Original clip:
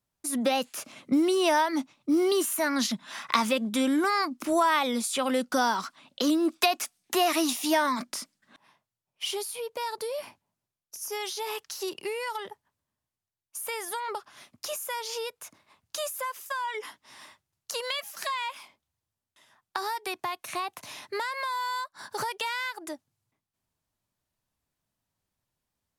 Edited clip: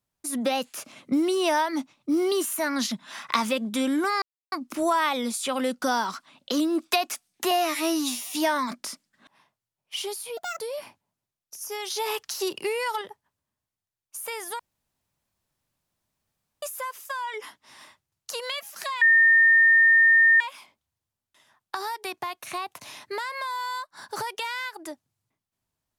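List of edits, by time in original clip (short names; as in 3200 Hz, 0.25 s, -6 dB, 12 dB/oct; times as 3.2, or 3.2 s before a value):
4.22 insert silence 0.30 s
7.21–7.62 stretch 2×
9.66–10.01 speed 150%
11.31–12.42 gain +5 dB
14–16.03 room tone
18.42 add tone 1820 Hz -13.5 dBFS 1.39 s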